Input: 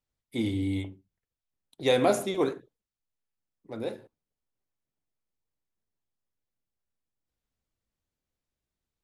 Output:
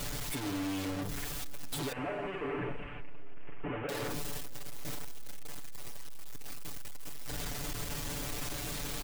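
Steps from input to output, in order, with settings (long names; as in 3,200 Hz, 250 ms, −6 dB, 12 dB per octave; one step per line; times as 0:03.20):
sign of each sample alone
0:01.92–0:03.89: Butterworth low-pass 2,900 Hz 72 dB per octave
comb filter 6.9 ms, depth 100%
on a send: convolution reverb RT60 5.2 s, pre-delay 108 ms, DRR 20 dB
on the sum: level −4 dB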